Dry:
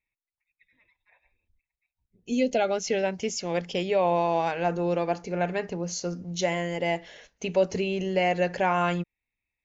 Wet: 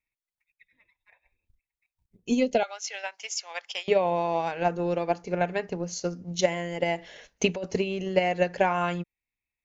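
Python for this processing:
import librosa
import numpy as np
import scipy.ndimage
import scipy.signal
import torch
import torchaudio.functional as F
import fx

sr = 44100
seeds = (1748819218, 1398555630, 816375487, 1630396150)

y = fx.highpass(x, sr, hz=840.0, slope=24, at=(2.63, 3.88))
y = fx.over_compress(y, sr, threshold_db=-27.0, ratio=-1.0, at=(6.98, 7.64))
y = fx.transient(y, sr, attack_db=8, sustain_db=-2)
y = y * librosa.db_to_amplitude(-2.5)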